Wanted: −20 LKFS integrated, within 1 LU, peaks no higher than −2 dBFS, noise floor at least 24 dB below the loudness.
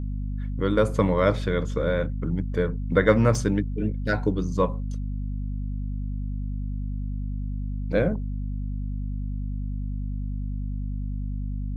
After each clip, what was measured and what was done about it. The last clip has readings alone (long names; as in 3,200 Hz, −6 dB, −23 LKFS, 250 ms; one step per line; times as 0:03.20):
number of dropouts 2; longest dropout 1.9 ms; mains hum 50 Hz; hum harmonics up to 250 Hz; level of the hum −26 dBFS; integrated loudness −27.0 LKFS; sample peak −5.0 dBFS; target loudness −20.0 LKFS
→ repair the gap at 0:01.19/0:03.35, 1.9 ms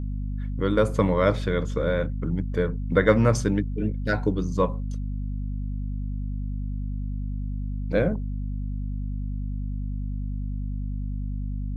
number of dropouts 0; mains hum 50 Hz; hum harmonics up to 250 Hz; level of the hum −26 dBFS
→ mains-hum notches 50/100/150/200/250 Hz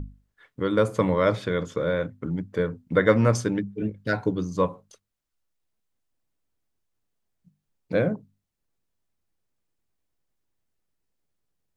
mains hum none found; integrated loudness −25.5 LKFS; sample peak −5.0 dBFS; target loudness −20.0 LKFS
→ level +5.5 dB
brickwall limiter −2 dBFS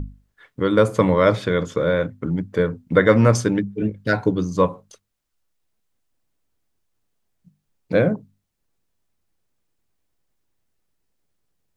integrated loudness −20.0 LKFS; sample peak −2.0 dBFS; background noise floor −76 dBFS